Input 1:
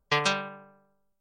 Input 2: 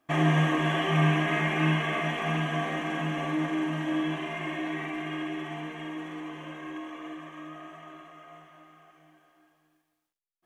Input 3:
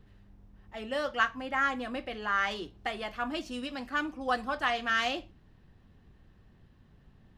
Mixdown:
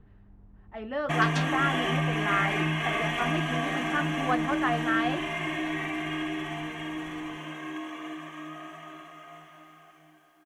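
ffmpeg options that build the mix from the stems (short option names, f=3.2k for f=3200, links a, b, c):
-filter_complex "[0:a]adelay=1100,volume=-10dB[a];[1:a]acompressor=threshold=-27dB:ratio=4,bandreject=f=440:w=12,adynamicequalizer=threshold=0.00158:dfrequency=1600:dqfactor=0.7:tfrequency=1600:tqfactor=0.7:attack=5:release=100:ratio=0.375:range=1.5:mode=boostabove:tftype=highshelf,adelay=1000,volume=1.5dB[b];[2:a]lowpass=1.7k,volume=2.5dB[c];[a][b][c]amix=inputs=3:normalize=0,highshelf=f=7.7k:g=4.5,bandreject=f=530:w=12"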